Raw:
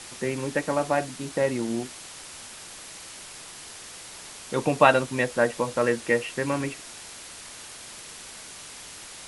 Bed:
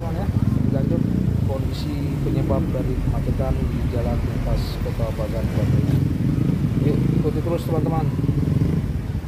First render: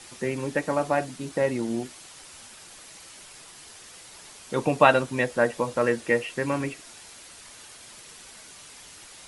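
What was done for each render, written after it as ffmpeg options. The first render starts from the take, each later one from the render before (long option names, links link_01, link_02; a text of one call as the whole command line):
ffmpeg -i in.wav -af "afftdn=noise_reduction=6:noise_floor=-43" out.wav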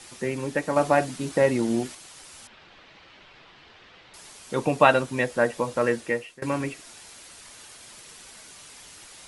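ffmpeg -i in.wav -filter_complex "[0:a]asettb=1/sr,asplit=3[link_01][link_02][link_03];[link_01]atrim=end=2.474[link_04];[link_02]atrim=start=2.47:end=4.14,asetpts=PTS-STARTPTS,afade=type=in:duration=0.004:curve=qsin,afade=type=out:start_time=1.666:duration=0.004:curve=qsin,lowpass=frequency=3600:width=0.5412,lowpass=frequency=3600:width=1.3066[link_05];[link_03]atrim=start=4.136[link_06];[link_04][link_05]acrossfade=duration=0.004:curve1=hsin:curve2=qsin[link_07];[link_07][link_06]acrossfade=duration=0.004:curve1=qsin:curve2=hsin,asplit=4[link_08][link_09][link_10][link_11];[link_08]atrim=end=0.762[link_12];[link_09]atrim=start=0.758:end=1.952,asetpts=PTS-STARTPTS,volume=4dB[link_13];[link_10]atrim=start=1.948:end=6.42,asetpts=PTS-STARTPTS,afade=type=out:start_time=4.012:duration=0.46:silence=0.0707946[link_14];[link_11]atrim=start=6.42,asetpts=PTS-STARTPTS,afade=type=in:duration=0.004:curve=hsin:silence=0.0707946[link_15];[link_12][link_13]acrossfade=duration=0.004:curve1=hsin:curve2=hsin[link_16];[link_14][link_15]concat=n=2:v=0:a=1[link_17];[link_16][link_17]acrossfade=duration=0.004:curve1=hsin:curve2=hsin" out.wav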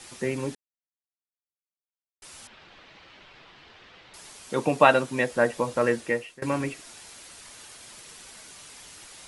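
ffmpeg -i in.wav -filter_complex "[0:a]asettb=1/sr,asplit=3[link_01][link_02][link_03];[link_01]atrim=end=4.484[link_04];[link_02]atrim=start=4.48:end=5.31,asetpts=PTS-STARTPTS,afade=type=in:duration=0.004:curve=qsin,afade=type=out:start_time=0.826:duration=0.004:curve=qsin,highpass=130[link_05];[link_03]atrim=start=5.306[link_06];[link_04][link_05]acrossfade=duration=0.004:curve1=hsin:curve2=qsin[link_07];[link_07][link_06]acrossfade=duration=0.004:curve1=qsin:curve2=hsin,asplit=3[link_08][link_09][link_10];[link_08]atrim=end=0.55,asetpts=PTS-STARTPTS,afade=type=out:start_time=0.546:duration=0.004:curve=hsin[link_11];[link_09]atrim=start=0.55:end=2.22,asetpts=PTS-STARTPTS,volume=0[link_12];[link_10]atrim=start=2.22,asetpts=PTS-STARTPTS,afade=type=in:duration=0.004:curve=hsin[link_13];[link_11][link_12][link_13]concat=n=3:v=0:a=1" out.wav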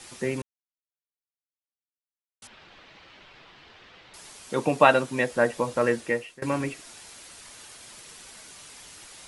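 ffmpeg -i in.wav -filter_complex "[0:a]asplit=3[link_01][link_02][link_03];[link_01]atrim=end=0.42,asetpts=PTS-STARTPTS,afade=type=out:start_time=0.416:duration=0.004:curve=hsin[link_04];[link_02]atrim=start=0.42:end=2.42,asetpts=PTS-STARTPTS,volume=0[link_05];[link_03]atrim=start=2.42,asetpts=PTS-STARTPTS,afade=type=in:duration=0.004:curve=hsin[link_06];[link_04][link_05][link_06]concat=n=3:v=0:a=1" out.wav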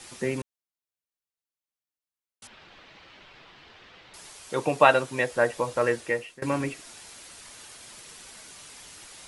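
ffmpeg -i in.wav -filter_complex "[0:a]asettb=1/sr,asplit=3[link_01][link_02][link_03];[link_01]atrim=end=4.284[link_04];[link_02]atrim=start=4.28:end=6.19,asetpts=PTS-STARTPTS,afade=type=in:duration=0.004:curve=qsin,afade=type=out:start_time=1.906:duration=0.004:curve=qsin,equalizer=frequency=220:width_type=o:width=0.77:gain=-8[link_05];[link_03]atrim=start=6.186[link_06];[link_04][link_05]acrossfade=duration=0.004:curve1=hsin:curve2=qsin[link_07];[link_07][link_06]acrossfade=duration=0.004:curve1=qsin:curve2=hsin" out.wav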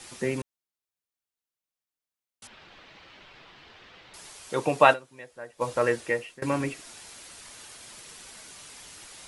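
ffmpeg -i in.wav -filter_complex "[0:a]asplit=3[link_01][link_02][link_03];[link_01]atrim=end=5.06,asetpts=PTS-STARTPTS,afade=type=out:start_time=4.93:duration=0.13:curve=exp:silence=0.11885[link_04];[link_02]atrim=start=5.06:end=5.49,asetpts=PTS-STARTPTS,volume=-18.5dB[link_05];[link_03]atrim=start=5.49,asetpts=PTS-STARTPTS,afade=type=in:duration=0.13:curve=exp:silence=0.11885[link_06];[link_04][link_05][link_06]concat=n=3:v=0:a=1" out.wav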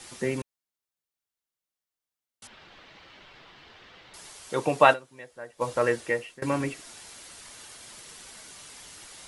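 ffmpeg -i in.wav -af "bandreject=frequency=2500:width=29" out.wav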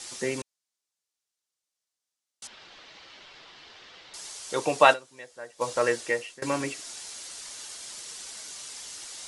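ffmpeg -i in.wav -af "lowpass=7100,bass=frequency=250:gain=-7,treble=frequency=4000:gain=12" out.wav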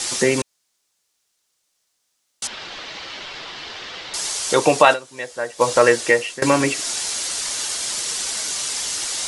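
ffmpeg -i in.wav -filter_complex "[0:a]asplit=2[link_01][link_02];[link_02]acompressor=threshold=-34dB:ratio=6,volume=2.5dB[link_03];[link_01][link_03]amix=inputs=2:normalize=0,alimiter=level_in=8.5dB:limit=-1dB:release=50:level=0:latency=1" out.wav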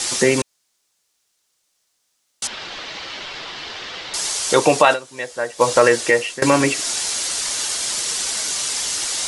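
ffmpeg -i in.wav -af "volume=2dB,alimiter=limit=-2dB:level=0:latency=1" out.wav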